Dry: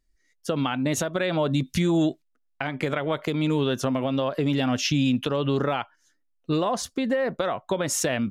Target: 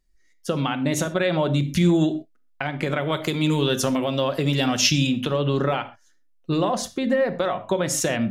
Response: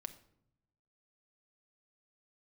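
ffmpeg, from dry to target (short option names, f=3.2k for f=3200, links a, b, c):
-filter_complex "[0:a]asettb=1/sr,asplit=3[a][b][c];[a]atrim=end=3.014[d];[b]atrim=start=3.01:end=5.07,asetpts=PTS-STARTPTS,afade=t=in:d=0.004:c=qsin,afade=t=out:st=2.056:d=0.004:c=qsin,highshelf=f=3.7k:g=10.5[e];[c]atrim=start=5.066[f];[d][e]acrossfade=d=0.004:c1=hsin:c2=qsin[g];[g][f]acrossfade=d=0.004:c1=qsin:c2=hsin[h];[1:a]atrim=start_sample=2205,atrim=end_sample=6174[i];[h][i]afir=irnorm=-1:irlink=0,volume=5.5dB"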